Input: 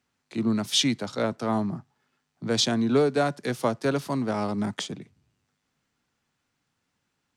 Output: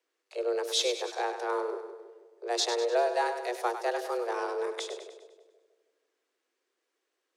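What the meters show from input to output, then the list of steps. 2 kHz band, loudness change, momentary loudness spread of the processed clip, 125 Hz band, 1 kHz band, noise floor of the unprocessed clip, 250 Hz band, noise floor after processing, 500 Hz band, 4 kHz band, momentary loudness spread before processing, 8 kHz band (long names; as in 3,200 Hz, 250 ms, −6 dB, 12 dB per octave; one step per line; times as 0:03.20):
−2.0 dB, −4.5 dB, 15 LU, below −40 dB, +0.5 dB, −78 dBFS, −17.0 dB, −83 dBFS, −1.5 dB, −5.0 dB, 13 LU, −4.0 dB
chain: echo with a time of its own for lows and highs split 420 Hz, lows 160 ms, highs 100 ms, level −9 dB
frequency shifter +240 Hz
level −5.5 dB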